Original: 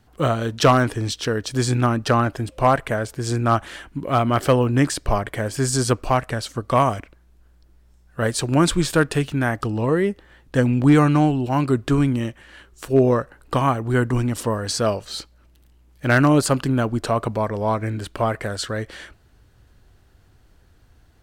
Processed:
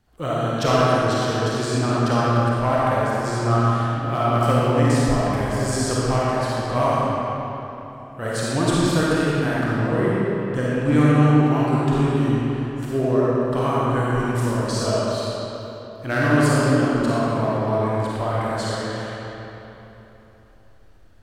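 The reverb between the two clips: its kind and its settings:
comb and all-pass reverb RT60 3.5 s, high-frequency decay 0.7×, pre-delay 10 ms, DRR −8 dB
level −8.5 dB

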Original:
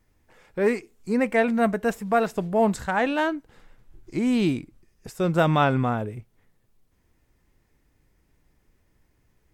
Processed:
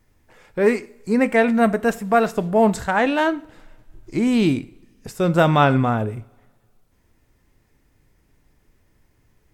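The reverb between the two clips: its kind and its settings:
coupled-rooms reverb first 0.42 s, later 1.8 s, from −21 dB, DRR 14 dB
level +4.5 dB

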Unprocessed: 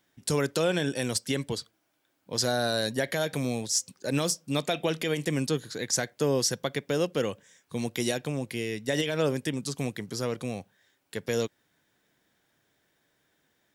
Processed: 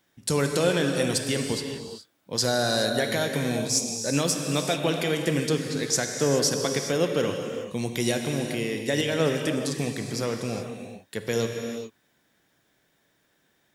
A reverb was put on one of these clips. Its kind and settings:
reverb whose tail is shaped and stops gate 450 ms flat, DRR 3.5 dB
level +2 dB

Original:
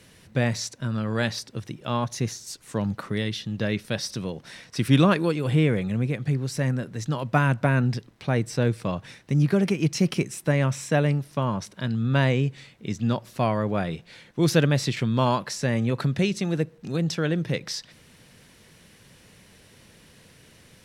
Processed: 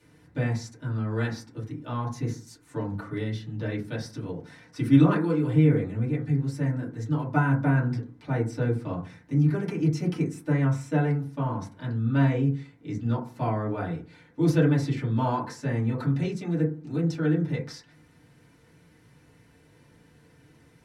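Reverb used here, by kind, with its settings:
feedback delay network reverb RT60 0.36 s, low-frequency decay 1.35×, high-frequency decay 0.25×, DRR −9 dB
level −15 dB

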